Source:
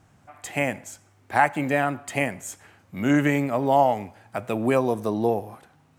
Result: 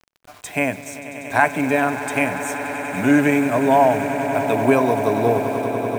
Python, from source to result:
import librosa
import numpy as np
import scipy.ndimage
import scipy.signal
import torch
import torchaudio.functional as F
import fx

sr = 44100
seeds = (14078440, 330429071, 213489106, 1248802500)

y = fx.ripple_eq(x, sr, per_octave=1.6, db=8)
y = fx.quant_dither(y, sr, seeds[0], bits=8, dither='none')
y = fx.echo_swell(y, sr, ms=96, loudest=8, wet_db=-15.0)
y = F.gain(torch.from_numpy(y), 3.0).numpy()